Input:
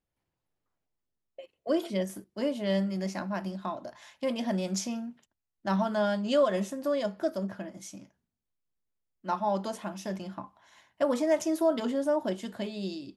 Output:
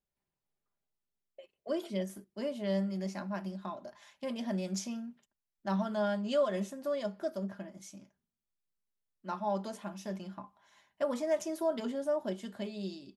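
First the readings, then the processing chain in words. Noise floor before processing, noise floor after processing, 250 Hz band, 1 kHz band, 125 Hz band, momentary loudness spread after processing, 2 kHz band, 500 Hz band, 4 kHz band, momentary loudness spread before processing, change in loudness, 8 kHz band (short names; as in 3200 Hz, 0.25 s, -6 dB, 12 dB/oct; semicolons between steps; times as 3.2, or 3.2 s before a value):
under -85 dBFS, under -85 dBFS, -5.0 dB, -6.0 dB, -3.5 dB, 15 LU, -6.0 dB, -5.0 dB, -6.0 dB, 15 LU, -5.0 dB, -5.5 dB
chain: comb 5 ms, depth 40%; gain -6.5 dB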